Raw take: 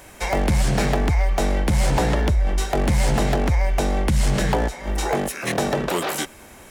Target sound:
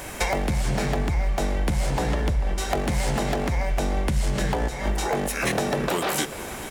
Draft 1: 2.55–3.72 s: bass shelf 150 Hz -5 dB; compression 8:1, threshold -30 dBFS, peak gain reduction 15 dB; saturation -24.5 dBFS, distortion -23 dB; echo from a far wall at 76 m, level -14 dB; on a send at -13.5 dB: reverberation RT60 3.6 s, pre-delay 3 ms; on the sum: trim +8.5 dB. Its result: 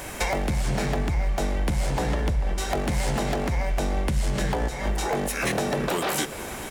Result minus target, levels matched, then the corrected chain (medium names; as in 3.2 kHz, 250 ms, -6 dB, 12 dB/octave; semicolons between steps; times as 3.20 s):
saturation: distortion +21 dB
2.55–3.72 s: bass shelf 150 Hz -5 dB; compression 8:1, threshold -30 dBFS, peak gain reduction 15 dB; saturation -12.5 dBFS, distortion -44 dB; echo from a far wall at 76 m, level -14 dB; on a send at -13.5 dB: reverberation RT60 3.6 s, pre-delay 3 ms; on the sum: trim +8.5 dB